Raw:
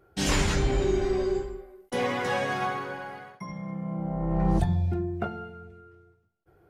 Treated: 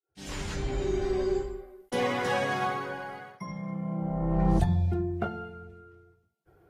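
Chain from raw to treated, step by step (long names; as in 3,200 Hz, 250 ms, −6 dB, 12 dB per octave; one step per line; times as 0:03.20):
fade in at the beginning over 1.43 s
Ogg Vorbis 48 kbit/s 48,000 Hz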